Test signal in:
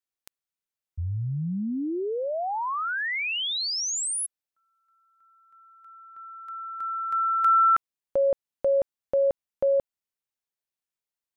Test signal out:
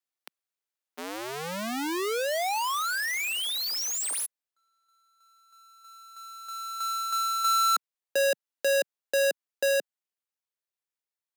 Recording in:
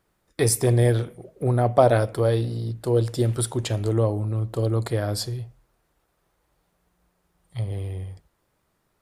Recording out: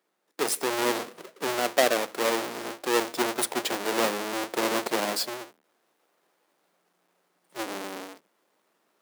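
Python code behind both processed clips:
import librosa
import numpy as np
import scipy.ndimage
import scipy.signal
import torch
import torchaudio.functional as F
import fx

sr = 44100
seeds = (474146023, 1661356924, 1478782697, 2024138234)

y = fx.halfwave_hold(x, sr)
y = scipy.signal.sosfilt(scipy.signal.bessel(8, 350.0, 'highpass', norm='mag', fs=sr, output='sos'), y)
y = fx.rider(y, sr, range_db=3, speed_s=0.5)
y = y * librosa.db_to_amplitude(-4.5)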